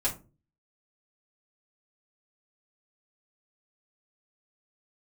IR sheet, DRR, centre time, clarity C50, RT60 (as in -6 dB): -6.5 dB, 15 ms, 12.5 dB, 0.35 s